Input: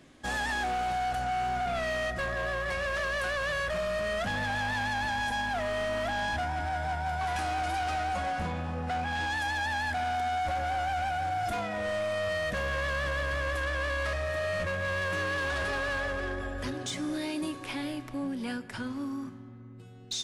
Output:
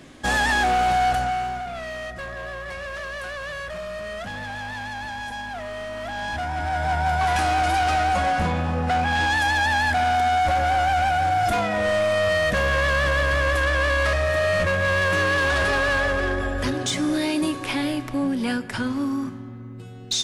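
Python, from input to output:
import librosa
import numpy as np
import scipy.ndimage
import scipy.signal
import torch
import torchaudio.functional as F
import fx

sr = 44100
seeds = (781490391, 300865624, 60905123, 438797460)

y = fx.gain(x, sr, db=fx.line((1.09, 10.5), (1.69, -1.5), (5.95, -1.5), (7.0, 10.0)))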